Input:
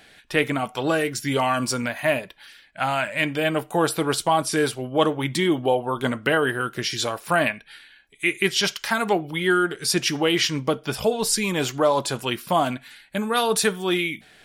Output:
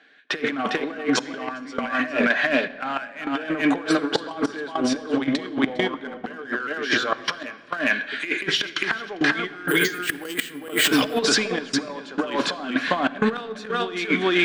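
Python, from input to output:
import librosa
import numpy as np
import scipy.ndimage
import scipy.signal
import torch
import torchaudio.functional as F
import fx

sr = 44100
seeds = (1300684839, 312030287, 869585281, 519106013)

p1 = fx.law_mismatch(x, sr, coded='mu')
p2 = fx.cabinet(p1, sr, low_hz=190.0, low_slope=24, high_hz=5300.0, hz=(270.0, 440.0, 1100.0, 1600.0, 5000.0), db=(8, 4, 4, 9, -6))
p3 = 10.0 ** (-19.0 / 20.0) * np.tanh(p2 / 10.0 ** (-19.0 / 20.0))
p4 = p2 + (p3 * 10.0 ** (-3.0 / 20.0))
p5 = fx.resample_bad(p4, sr, factor=4, down='filtered', up='hold', at=(9.68, 10.79))
p6 = fx.low_shelf(p5, sr, hz=300.0, db=-4.5)
p7 = p6 + fx.echo_single(p6, sr, ms=403, db=-5.0, dry=0)
p8 = fx.step_gate(p7, sr, bpm=101, pattern='..xxxxxx.x', floor_db=-24.0, edge_ms=4.5)
p9 = fx.notch(p8, sr, hz=910.0, q=11.0)
p10 = fx.over_compress(p9, sr, threshold_db=-23.0, ratio=-0.5)
y = fx.room_shoebox(p10, sr, seeds[0], volume_m3=3900.0, walls='mixed', distance_m=0.46)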